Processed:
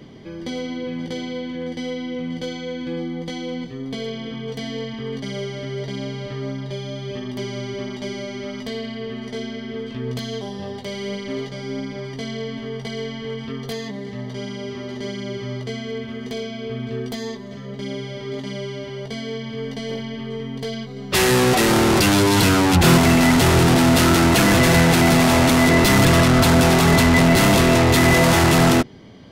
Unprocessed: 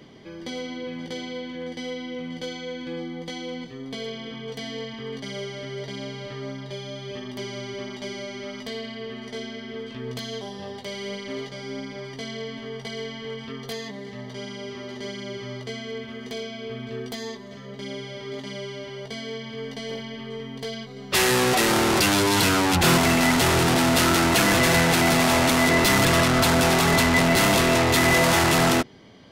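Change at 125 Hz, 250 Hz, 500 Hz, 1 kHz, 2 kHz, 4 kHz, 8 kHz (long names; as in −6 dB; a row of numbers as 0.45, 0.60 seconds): +8.0, +6.5, +4.0, +2.5, +2.0, +1.5, +1.5 decibels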